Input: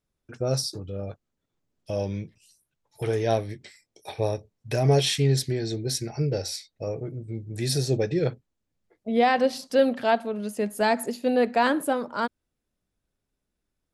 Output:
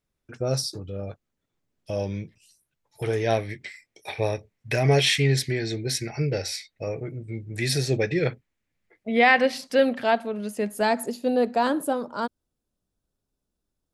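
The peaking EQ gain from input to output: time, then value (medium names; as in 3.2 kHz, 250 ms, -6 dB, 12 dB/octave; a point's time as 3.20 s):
peaking EQ 2.1 kHz 0.91 oct
3.08 s +3 dB
3.50 s +12.5 dB
9.45 s +12.5 dB
10.10 s +2.5 dB
10.65 s +2.5 dB
11.43 s -8.5 dB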